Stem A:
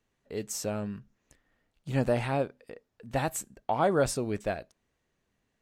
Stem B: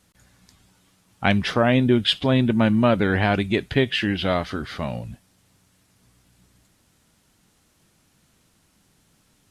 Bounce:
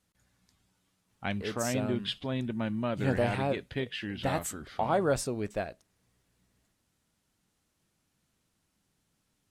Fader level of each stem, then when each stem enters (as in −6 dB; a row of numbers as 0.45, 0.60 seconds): −2.0, −14.0 decibels; 1.10, 0.00 seconds